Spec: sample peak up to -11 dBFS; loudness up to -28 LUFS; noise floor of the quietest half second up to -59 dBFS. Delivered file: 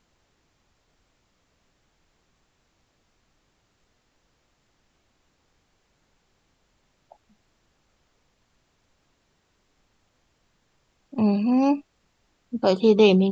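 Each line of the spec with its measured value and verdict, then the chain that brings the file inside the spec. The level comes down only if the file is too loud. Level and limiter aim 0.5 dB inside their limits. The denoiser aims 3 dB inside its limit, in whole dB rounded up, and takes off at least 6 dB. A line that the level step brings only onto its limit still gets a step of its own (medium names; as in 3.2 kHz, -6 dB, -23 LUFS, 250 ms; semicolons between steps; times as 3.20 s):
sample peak -5.5 dBFS: fail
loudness -21.0 LUFS: fail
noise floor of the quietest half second -69 dBFS: pass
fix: trim -7.5 dB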